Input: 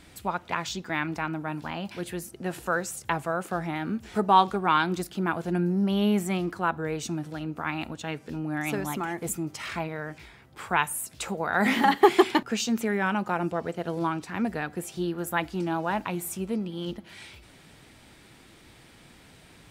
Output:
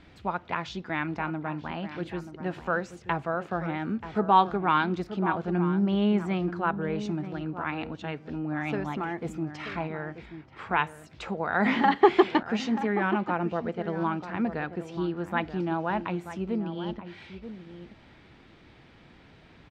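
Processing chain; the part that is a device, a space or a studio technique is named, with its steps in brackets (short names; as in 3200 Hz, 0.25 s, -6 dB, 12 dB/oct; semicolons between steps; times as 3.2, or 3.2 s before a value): shout across a valley (air absorption 210 m; outdoor echo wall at 160 m, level -11 dB)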